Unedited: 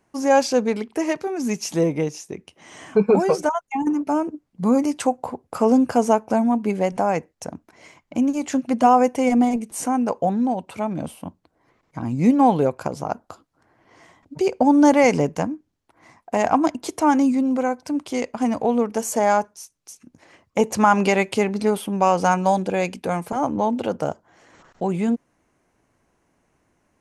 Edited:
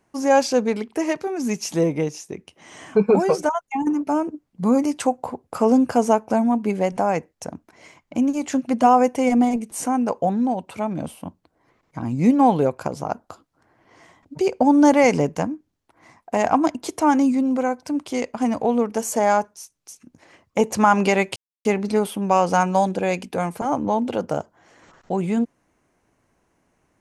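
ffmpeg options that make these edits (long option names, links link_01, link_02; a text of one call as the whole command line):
ffmpeg -i in.wav -filter_complex "[0:a]asplit=2[link_01][link_02];[link_01]atrim=end=21.36,asetpts=PTS-STARTPTS,afade=type=out:start_time=21.356:duration=0.004:curve=hsin,apad=pad_dur=0.29[link_03];[link_02]atrim=start=21.36,asetpts=PTS-STARTPTS,afade=type=in:duration=0.004:curve=hsin[link_04];[link_03][link_04]concat=n=2:v=0:a=1" out.wav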